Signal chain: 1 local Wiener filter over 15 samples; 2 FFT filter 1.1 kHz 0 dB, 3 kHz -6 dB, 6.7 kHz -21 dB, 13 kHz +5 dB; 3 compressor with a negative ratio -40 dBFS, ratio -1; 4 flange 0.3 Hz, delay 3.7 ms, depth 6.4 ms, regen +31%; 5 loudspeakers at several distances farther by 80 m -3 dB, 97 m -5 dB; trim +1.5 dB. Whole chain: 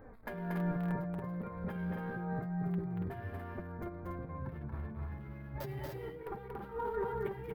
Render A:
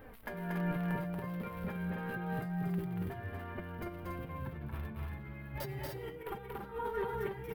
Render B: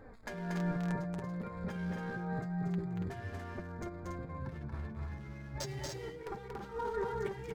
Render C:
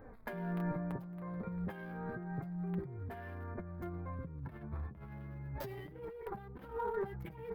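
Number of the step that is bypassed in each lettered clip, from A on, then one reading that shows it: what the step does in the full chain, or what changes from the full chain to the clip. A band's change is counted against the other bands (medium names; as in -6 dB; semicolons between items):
1, 2 kHz band +4.0 dB; 2, 2 kHz band +2.0 dB; 5, echo-to-direct -1.0 dB to none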